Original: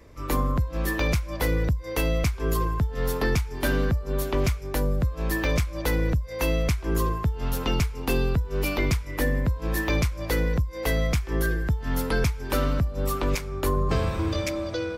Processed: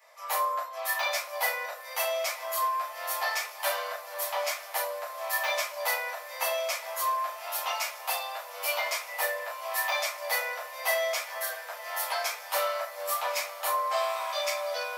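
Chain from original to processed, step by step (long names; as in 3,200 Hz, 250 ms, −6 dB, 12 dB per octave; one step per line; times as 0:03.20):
Butterworth high-pass 570 Hz 72 dB per octave
high-shelf EQ 8,700 Hz +6 dB
feedback delay with all-pass diffusion 1,062 ms, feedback 65%, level −15 dB
convolution reverb RT60 0.40 s, pre-delay 6 ms, DRR −7.5 dB
level −8 dB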